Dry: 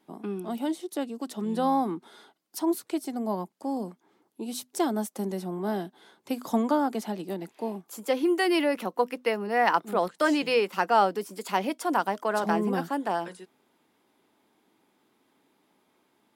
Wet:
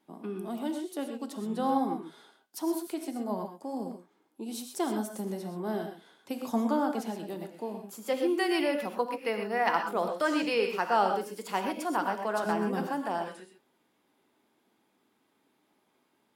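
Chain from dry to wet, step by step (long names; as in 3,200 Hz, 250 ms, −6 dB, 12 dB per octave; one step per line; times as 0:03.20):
flanger 0.23 Hz, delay 3.4 ms, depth 6.8 ms, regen −84%
reverb whose tail is shaped and stops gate 150 ms rising, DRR 4.5 dB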